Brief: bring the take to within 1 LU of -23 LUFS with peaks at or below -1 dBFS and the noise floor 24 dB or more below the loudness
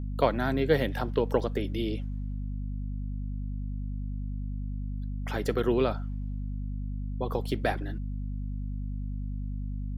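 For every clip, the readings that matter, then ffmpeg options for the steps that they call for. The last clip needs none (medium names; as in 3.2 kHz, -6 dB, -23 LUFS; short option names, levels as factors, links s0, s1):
hum 50 Hz; highest harmonic 250 Hz; hum level -31 dBFS; loudness -32.0 LUFS; peak level -9.0 dBFS; loudness target -23.0 LUFS
-> -af "bandreject=f=50:t=h:w=4,bandreject=f=100:t=h:w=4,bandreject=f=150:t=h:w=4,bandreject=f=200:t=h:w=4,bandreject=f=250:t=h:w=4"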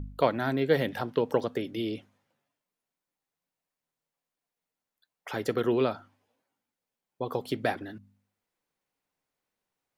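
hum not found; loudness -30.0 LUFS; peak level -9.5 dBFS; loudness target -23.0 LUFS
-> -af "volume=2.24"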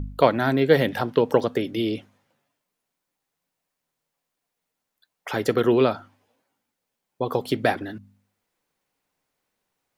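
loudness -23.0 LUFS; peak level -2.5 dBFS; noise floor -82 dBFS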